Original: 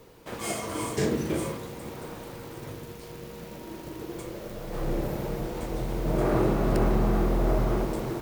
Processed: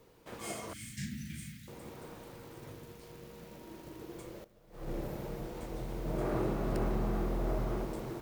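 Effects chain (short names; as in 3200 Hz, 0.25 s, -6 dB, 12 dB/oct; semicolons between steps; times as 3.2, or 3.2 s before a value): 0.73–1.68 elliptic band-stop 220–1800 Hz, stop band 40 dB; 4.44–4.94 upward expander 2.5:1, over -37 dBFS; gain -9 dB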